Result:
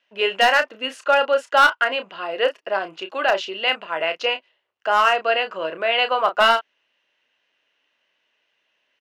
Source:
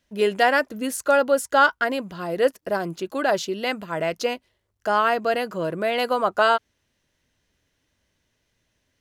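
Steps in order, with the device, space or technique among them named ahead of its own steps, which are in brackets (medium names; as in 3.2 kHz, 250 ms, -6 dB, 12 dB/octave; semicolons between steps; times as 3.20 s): megaphone (band-pass 620–3000 Hz; peaking EQ 2.8 kHz +11 dB 0.29 oct; hard clipper -12.5 dBFS, distortion -16 dB; doubling 31 ms -9 dB); trim +4 dB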